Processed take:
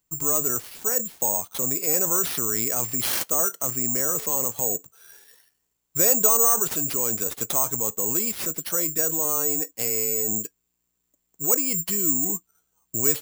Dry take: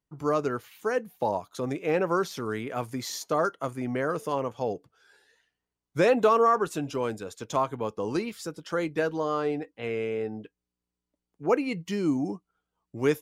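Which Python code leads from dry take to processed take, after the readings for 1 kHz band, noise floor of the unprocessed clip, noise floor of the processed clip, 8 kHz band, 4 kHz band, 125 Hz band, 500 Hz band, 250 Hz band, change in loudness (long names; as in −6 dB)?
−4.5 dB, below −85 dBFS, −76 dBFS, +24.0 dB, +6.0 dB, −1.5 dB, −4.5 dB, −3.0 dB, +7.0 dB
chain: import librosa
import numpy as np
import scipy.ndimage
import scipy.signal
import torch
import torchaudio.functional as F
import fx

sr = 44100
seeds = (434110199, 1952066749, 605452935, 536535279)

p1 = fx.over_compress(x, sr, threshold_db=-36.0, ratio=-1.0)
p2 = x + (p1 * librosa.db_to_amplitude(-1.0))
p3 = (np.kron(p2[::6], np.eye(6)[0]) * 6)[:len(p2)]
y = p3 * librosa.db_to_amplitude(-6.0)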